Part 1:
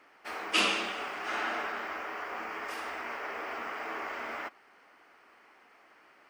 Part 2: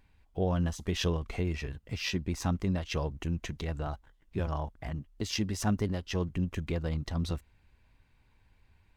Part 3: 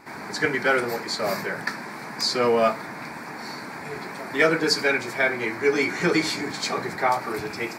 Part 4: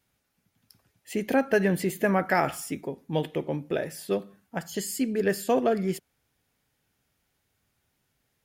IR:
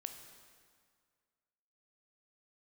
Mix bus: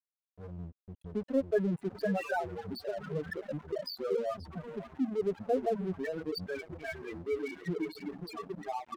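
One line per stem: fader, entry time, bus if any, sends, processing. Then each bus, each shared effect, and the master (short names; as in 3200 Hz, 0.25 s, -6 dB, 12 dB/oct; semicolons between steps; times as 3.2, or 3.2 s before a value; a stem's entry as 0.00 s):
-1.0 dB, 1.60 s, no send, echo send -21 dB, HPF 59 Hz 6 dB/oct
-9.0 dB, 0.00 s, no send, echo send -17 dB, dry
-3.0 dB, 1.65 s, no send, echo send -9 dB, compressor 3:1, threshold -27 dBFS, peak gain reduction 10 dB; bell 170 Hz +3.5 dB 0.96 oct
-3.0 dB, 0.00 s, no send, echo send -19.5 dB, reverb removal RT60 1.4 s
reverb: off
echo: echo 0.531 s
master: bell 3300 Hz -3 dB 0.5 oct; loudest bins only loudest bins 4; crossover distortion -46.5 dBFS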